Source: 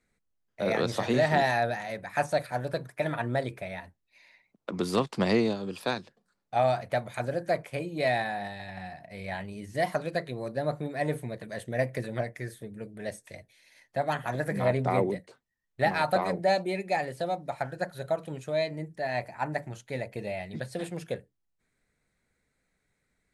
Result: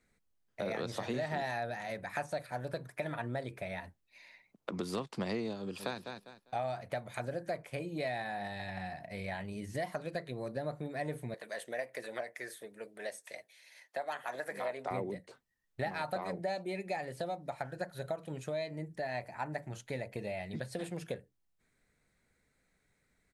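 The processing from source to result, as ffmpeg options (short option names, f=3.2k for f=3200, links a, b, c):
-filter_complex "[0:a]asplit=2[a][b];[b]afade=t=in:st=5.59:d=0.01,afade=t=out:st=5.99:d=0.01,aecho=0:1:200|400|600:0.266073|0.0532145|0.0106429[c];[a][c]amix=inputs=2:normalize=0,asettb=1/sr,asplit=3[d][e][f];[d]atrim=end=11.344[g];[e]atrim=start=11.34:end=14.91,asetpts=PTS-STARTPTS,afade=t=in:d=0.004:c=qsin,afade=t=out:st=3.566:d=0.004:c=qsin,highpass=520[h];[f]atrim=start=14.906[i];[g][h]acrossfade=d=0.004:c1=hsin:c2=qsin[j];[j][i]acrossfade=d=0.004:c1=qsin:c2=hsin,acompressor=threshold=-38dB:ratio=3,volume=1dB"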